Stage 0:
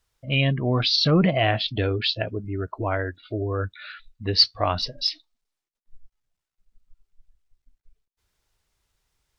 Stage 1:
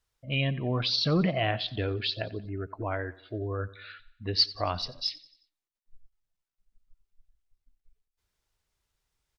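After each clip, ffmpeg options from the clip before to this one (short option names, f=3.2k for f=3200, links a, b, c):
-af "aecho=1:1:90|180|270|360:0.106|0.0498|0.0234|0.011,volume=-6.5dB"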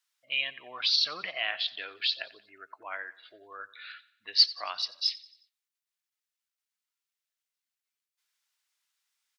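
-af "highpass=1.5k,volume=3dB"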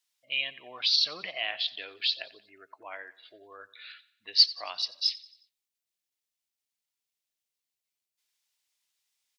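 -af "equalizer=f=1.4k:w=1.6:g=-9,volume=1.5dB"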